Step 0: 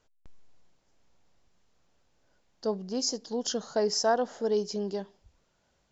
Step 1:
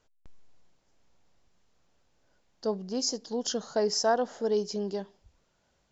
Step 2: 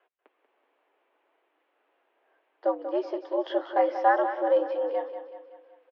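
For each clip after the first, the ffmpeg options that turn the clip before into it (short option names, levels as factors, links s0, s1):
-af anull
-filter_complex "[0:a]flanger=delay=3.2:depth=9.7:regen=-40:speed=0.71:shape=sinusoidal,asplit=2[s0][s1];[s1]aecho=0:1:188|376|564|752|940|1128:0.316|0.161|0.0823|0.0419|0.0214|0.0109[s2];[s0][s2]amix=inputs=2:normalize=0,highpass=f=240:t=q:w=0.5412,highpass=f=240:t=q:w=1.307,lowpass=f=2800:t=q:w=0.5176,lowpass=f=2800:t=q:w=0.7071,lowpass=f=2800:t=q:w=1.932,afreqshift=110,volume=2.66"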